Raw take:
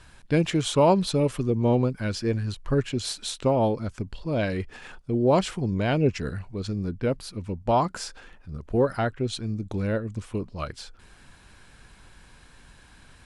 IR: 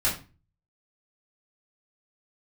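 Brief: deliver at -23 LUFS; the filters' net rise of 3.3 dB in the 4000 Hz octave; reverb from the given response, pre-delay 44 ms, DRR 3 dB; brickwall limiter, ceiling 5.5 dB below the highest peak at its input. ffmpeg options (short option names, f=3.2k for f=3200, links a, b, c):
-filter_complex "[0:a]equalizer=f=4k:t=o:g=4,alimiter=limit=-14.5dB:level=0:latency=1,asplit=2[a][b];[1:a]atrim=start_sample=2205,adelay=44[c];[b][c]afir=irnorm=-1:irlink=0,volume=-13.5dB[d];[a][d]amix=inputs=2:normalize=0,volume=1.5dB"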